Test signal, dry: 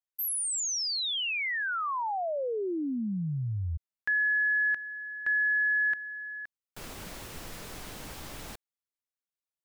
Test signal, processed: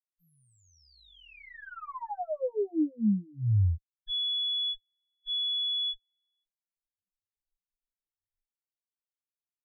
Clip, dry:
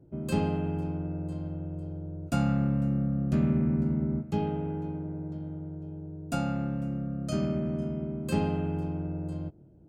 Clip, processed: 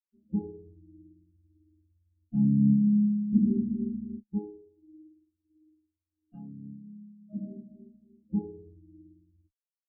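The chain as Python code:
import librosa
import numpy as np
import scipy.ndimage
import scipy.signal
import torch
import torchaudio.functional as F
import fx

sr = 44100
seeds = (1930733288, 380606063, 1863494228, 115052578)

y = fx.lower_of_two(x, sr, delay_ms=9.7)
y = fx.spectral_expand(y, sr, expansion=4.0)
y = y * librosa.db_to_amplitude(4.5)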